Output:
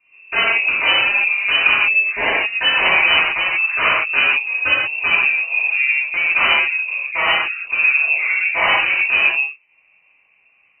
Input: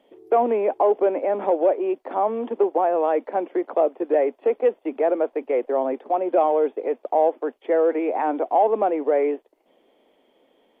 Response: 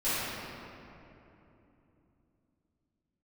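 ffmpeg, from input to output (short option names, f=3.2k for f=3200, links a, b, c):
-filter_complex "[0:a]asettb=1/sr,asplit=3[a][b][c];[a]atrim=end=1.764[d];[b]atrim=start=1.76:end=3.88,asetpts=PTS-STARTPTS,afade=t=in:d=0.004:c=qsin,afade=t=out:st=2.116:d=0.004:c=qsin,equalizer=f=1.3k:t=o:w=1.9:g=5[e];[c]atrim=start=3.876[f];[d][e]acrossfade=d=0.004:c1=hsin:c2=qsin[g];[g][f]acrossfade=d=0.004:c1=qsin:c2=hsin,aeval=exprs='(mod(3.55*val(0)+1,2)-1)/3.55':c=same[h];[1:a]atrim=start_sample=2205,afade=t=out:st=0.24:d=0.01,atrim=end_sample=11025[i];[h][i]afir=irnorm=-1:irlink=0,lowpass=f=2.6k:t=q:w=0.5098,lowpass=f=2.6k:t=q:w=0.6013,lowpass=f=2.6k:t=q:w=0.9,lowpass=f=2.6k:t=q:w=2.563,afreqshift=-3000,volume=-5dB"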